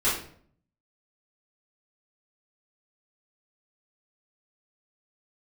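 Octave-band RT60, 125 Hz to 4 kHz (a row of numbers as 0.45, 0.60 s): 0.90, 0.70, 0.60, 0.50, 0.45, 0.40 s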